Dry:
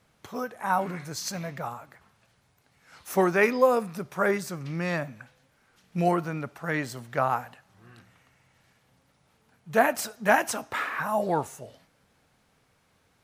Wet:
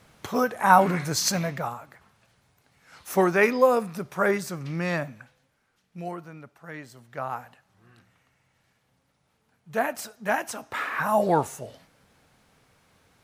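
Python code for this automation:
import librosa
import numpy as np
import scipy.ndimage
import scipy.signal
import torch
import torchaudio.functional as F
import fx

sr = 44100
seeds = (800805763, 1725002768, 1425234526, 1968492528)

y = fx.gain(x, sr, db=fx.line((1.29, 9.0), (1.78, 1.5), (5.02, 1.5), (5.99, -11.0), (6.91, -11.0), (7.45, -4.5), (10.54, -4.5), (11.09, 4.5)))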